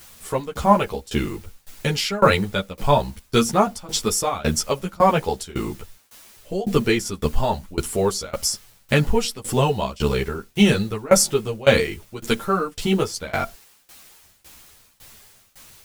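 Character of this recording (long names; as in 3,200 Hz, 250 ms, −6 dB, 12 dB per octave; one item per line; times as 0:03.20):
a quantiser's noise floor 8 bits, dither triangular
tremolo saw down 1.8 Hz, depth 95%
a shimmering, thickened sound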